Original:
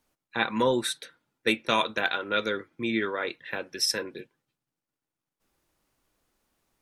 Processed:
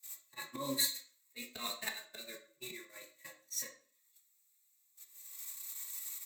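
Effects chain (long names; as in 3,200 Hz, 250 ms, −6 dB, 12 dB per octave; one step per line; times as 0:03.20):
spike at every zero crossing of −22.5 dBFS
hum removal 69.01 Hz, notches 36
noise gate −25 dBFS, range −43 dB
EQ curve with evenly spaced ripples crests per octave 1.1, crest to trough 10 dB
volume swells 487 ms
convolution reverb RT60 0.50 s, pre-delay 3 ms, DRR 2.5 dB
wrong playback speed 44.1 kHz file played as 48 kHz
barber-pole flanger 3 ms −0.38 Hz
level +2.5 dB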